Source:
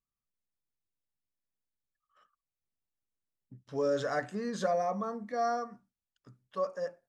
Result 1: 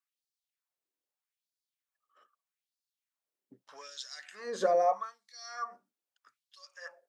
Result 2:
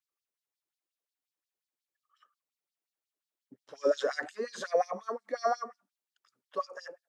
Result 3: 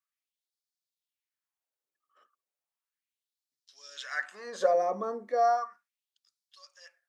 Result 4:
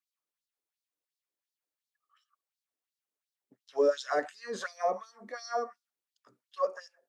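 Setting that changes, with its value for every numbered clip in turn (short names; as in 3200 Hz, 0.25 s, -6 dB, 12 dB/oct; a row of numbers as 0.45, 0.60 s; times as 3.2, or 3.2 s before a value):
LFO high-pass, rate: 0.8, 5.6, 0.35, 2.8 Hz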